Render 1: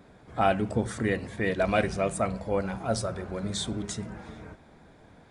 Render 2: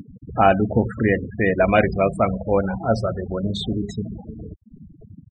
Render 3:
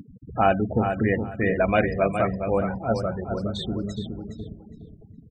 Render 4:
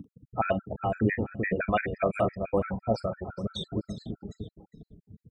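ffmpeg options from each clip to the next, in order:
ffmpeg -i in.wav -af "acompressor=mode=upward:threshold=-35dB:ratio=2.5,afftfilt=real='re*gte(hypot(re,im),0.0316)':imag='im*gte(hypot(re,im),0.0316)':win_size=1024:overlap=0.75,lowpass=3500,volume=8.5dB" out.wav
ffmpeg -i in.wav -filter_complex "[0:a]asplit=2[link_01][link_02];[link_02]adelay=415,lowpass=frequency=4400:poles=1,volume=-7dB,asplit=2[link_03][link_04];[link_04]adelay=415,lowpass=frequency=4400:poles=1,volume=0.22,asplit=2[link_05][link_06];[link_06]adelay=415,lowpass=frequency=4400:poles=1,volume=0.22[link_07];[link_01][link_03][link_05][link_07]amix=inputs=4:normalize=0,volume=-4.5dB" out.wav
ffmpeg -i in.wav -filter_complex "[0:a]asplit=2[link_01][link_02];[link_02]adelay=43,volume=-12dB[link_03];[link_01][link_03]amix=inputs=2:normalize=0,acrossover=split=640[link_04][link_05];[link_04]aeval=exprs='val(0)*(1-0.5/2+0.5/2*cos(2*PI*6.6*n/s))':channel_layout=same[link_06];[link_05]aeval=exprs='val(0)*(1-0.5/2-0.5/2*cos(2*PI*6.6*n/s))':channel_layout=same[link_07];[link_06][link_07]amix=inputs=2:normalize=0,afftfilt=real='re*gt(sin(2*PI*5.9*pts/sr)*(1-2*mod(floor(b*sr/1024/1300),2)),0)':imag='im*gt(sin(2*PI*5.9*pts/sr)*(1-2*mod(floor(b*sr/1024/1300),2)),0)':win_size=1024:overlap=0.75" out.wav

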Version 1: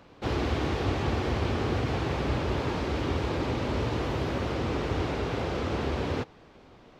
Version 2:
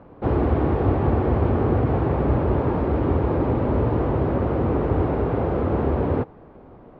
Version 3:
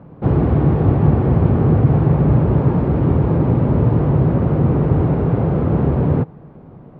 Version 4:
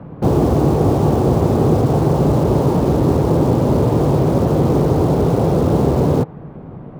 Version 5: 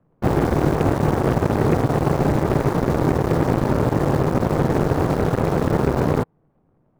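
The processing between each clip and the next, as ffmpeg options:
ffmpeg -i in.wav -af "lowpass=1000,volume=8.5dB" out.wav
ffmpeg -i in.wav -af "equalizer=frequency=150:width=1.4:gain=14.5" out.wav
ffmpeg -i in.wav -filter_complex "[0:a]acrossover=split=300|1300[link_01][link_02][link_03];[link_01]acompressor=threshold=-22dB:ratio=6[link_04];[link_03]aeval=exprs='(mod(126*val(0)+1,2)-1)/126':channel_layout=same[link_05];[link_04][link_02][link_05]amix=inputs=3:normalize=0,volume=6.5dB" out.wav
ffmpeg -i in.wav -af "aeval=exprs='0.75*(cos(1*acos(clip(val(0)/0.75,-1,1)))-cos(1*PI/2))+0.0668*(cos(3*acos(clip(val(0)/0.75,-1,1)))-cos(3*PI/2))+0.0668*(cos(5*acos(clip(val(0)/0.75,-1,1)))-cos(5*PI/2))+0.133*(cos(7*acos(clip(val(0)/0.75,-1,1)))-cos(7*PI/2))+0.0106*(cos(8*acos(clip(val(0)/0.75,-1,1)))-cos(8*PI/2))':channel_layout=same,volume=-3dB" out.wav

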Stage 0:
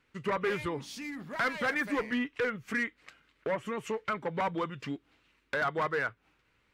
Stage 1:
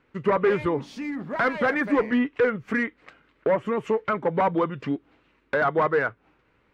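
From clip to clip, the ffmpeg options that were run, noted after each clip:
ffmpeg -i in.wav -af "lowpass=frequency=1900:poles=1,equalizer=frequency=460:width=0.38:gain=6,volume=5dB" out.wav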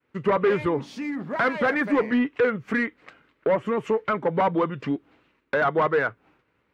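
ffmpeg -i in.wav -filter_complex "[0:a]agate=range=-33dB:threshold=-59dB:ratio=3:detection=peak,highpass=71,asplit=2[link_01][link_02];[link_02]aeval=exprs='0.282*sin(PI/2*1.58*val(0)/0.282)':channel_layout=same,volume=-9.5dB[link_03];[link_01][link_03]amix=inputs=2:normalize=0,volume=-4dB" out.wav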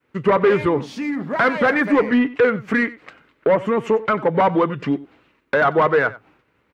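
ffmpeg -i in.wav -af "aecho=1:1:92:0.119,volume=5.5dB" out.wav

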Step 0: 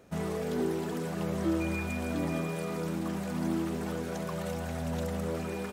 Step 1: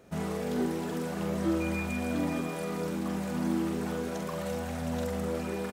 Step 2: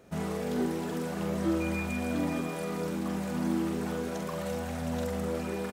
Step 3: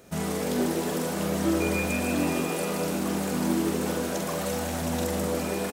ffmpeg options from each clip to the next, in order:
ffmpeg -i in.wav -filter_complex "[0:a]asplit=2[link_01][link_02];[link_02]adelay=45,volume=-5.5dB[link_03];[link_01][link_03]amix=inputs=2:normalize=0" out.wav
ffmpeg -i in.wav -af anull out.wav
ffmpeg -i in.wav -filter_complex "[0:a]highshelf=frequency=3900:gain=10,asplit=9[link_01][link_02][link_03][link_04][link_05][link_06][link_07][link_08][link_09];[link_02]adelay=151,afreqshift=93,volume=-8dB[link_10];[link_03]adelay=302,afreqshift=186,volume=-12dB[link_11];[link_04]adelay=453,afreqshift=279,volume=-16dB[link_12];[link_05]adelay=604,afreqshift=372,volume=-20dB[link_13];[link_06]adelay=755,afreqshift=465,volume=-24.1dB[link_14];[link_07]adelay=906,afreqshift=558,volume=-28.1dB[link_15];[link_08]adelay=1057,afreqshift=651,volume=-32.1dB[link_16];[link_09]adelay=1208,afreqshift=744,volume=-36.1dB[link_17];[link_01][link_10][link_11][link_12][link_13][link_14][link_15][link_16][link_17]amix=inputs=9:normalize=0,volume=3dB" out.wav

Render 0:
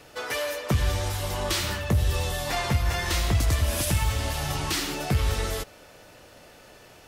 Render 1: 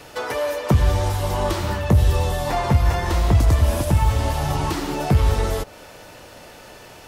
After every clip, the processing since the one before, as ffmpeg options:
ffmpeg -i in.wav -filter_complex "[0:a]equalizer=frequency=920:width_type=o:width=0.26:gain=4,acrossover=split=1200[link_01][link_02];[link_02]acompressor=threshold=-41dB:ratio=6[link_03];[link_01][link_03]amix=inputs=2:normalize=0,volume=7.5dB" out.wav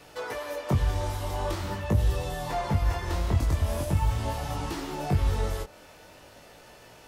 ffmpeg -i in.wav -af "flanger=delay=17.5:depth=6.2:speed=0.44,volume=-5.5dB" out.wav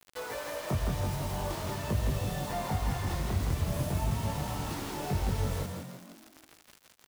ffmpeg -i in.wav -filter_complex "[0:a]asplit=2[link_01][link_02];[link_02]acompressor=threshold=-37dB:ratio=4,volume=0.5dB[link_03];[link_01][link_03]amix=inputs=2:normalize=0,acrusher=bits=5:mix=0:aa=0.000001,asplit=7[link_04][link_05][link_06][link_07][link_08][link_09][link_10];[link_05]adelay=164,afreqshift=45,volume=-4.5dB[link_11];[link_06]adelay=328,afreqshift=90,volume=-10.7dB[link_12];[link_07]adelay=492,afreqshift=135,volume=-16.9dB[link_13];[link_08]adelay=656,afreqshift=180,volume=-23.1dB[link_14];[link_09]adelay=820,afreqshift=225,volume=-29.3dB[link_15];[link_10]adelay=984,afreqshift=270,volume=-35.5dB[link_16];[link_04][link_11][link_12][link_13][link_14][link_15][link_16]amix=inputs=7:normalize=0,volume=-8.5dB" out.wav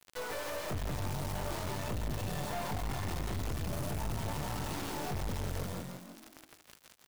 ffmpeg -i in.wav -af "aeval=exprs='(tanh(79.4*val(0)+0.7)-tanh(0.7))/79.4':channel_layout=same,volume=4dB" out.wav

